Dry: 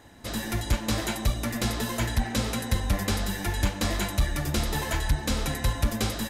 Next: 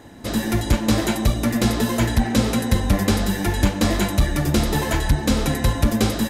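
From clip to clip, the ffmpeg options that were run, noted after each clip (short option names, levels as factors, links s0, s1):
-af "equalizer=f=270:w=0.53:g=7,volume=1.68"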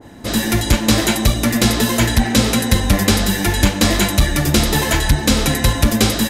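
-af "adynamicequalizer=threshold=0.0126:dfrequency=1600:dqfactor=0.7:tfrequency=1600:tqfactor=0.7:attack=5:release=100:ratio=0.375:range=3:mode=boostabove:tftype=highshelf,volume=1.5"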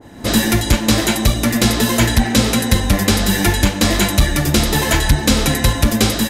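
-af "dynaudnorm=f=120:g=3:m=3.76,volume=0.891"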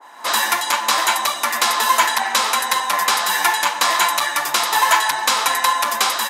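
-af "highpass=f=1000:t=q:w=4.5,volume=0.891"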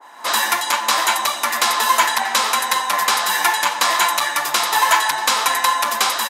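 -af "aecho=1:1:635:0.119"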